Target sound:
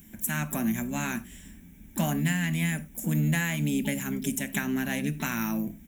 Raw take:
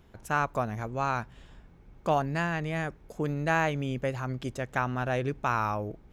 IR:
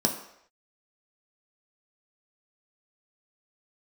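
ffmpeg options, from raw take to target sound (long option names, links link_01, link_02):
-filter_complex "[0:a]acontrast=21,firequalizer=gain_entry='entry(170,0);entry(250,1);entry(360,-23);entry(550,-12);entry(870,-14);entry(1400,-6);entry(2000,8);entry(4000,-18);entry(6900,3);entry(13000,11)':delay=0.05:min_phase=1,asetrate=45938,aresample=44100,aexciter=amount=2:drive=9.3:freq=3100,asplit=2[link_01][link_02];[link_02]asetrate=66075,aresample=44100,atempo=0.66742,volume=-12dB[link_03];[link_01][link_03]amix=inputs=2:normalize=0,acompressor=threshold=-24dB:ratio=6,equalizer=frequency=96:width=2.4:gain=9,asplit=2[link_04][link_05];[1:a]atrim=start_sample=2205,afade=type=out:start_time=0.15:duration=0.01,atrim=end_sample=7056[link_06];[link_05][link_06]afir=irnorm=-1:irlink=0,volume=-11dB[link_07];[link_04][link_07]amix=inputs=2:normalize=0,volume=-4.5dB"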